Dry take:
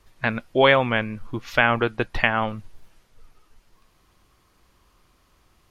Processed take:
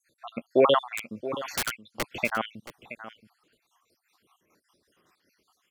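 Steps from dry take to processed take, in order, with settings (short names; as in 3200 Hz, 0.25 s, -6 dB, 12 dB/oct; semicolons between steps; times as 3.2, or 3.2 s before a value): random spectral dropouts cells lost 69%; HPF 230 Hz 12 dB/oct; in parallel at 0 dB: limiter -12 dBFS, peak gain reduction 7.5 dB; on the sum: rotary speaker horn 1.2 Hz, later 5 Hz, at 1.83; 0.83–2.11 wrapped overs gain 17.5 dB; on a send: echo 0.674 s -14 dB; on the sum: gain -3.5 dB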